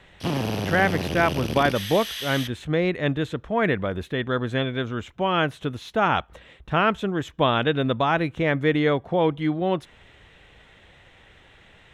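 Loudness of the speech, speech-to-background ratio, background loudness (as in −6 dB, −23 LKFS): −24.0 LKFS, 5.0 dB, −29.0 LKFS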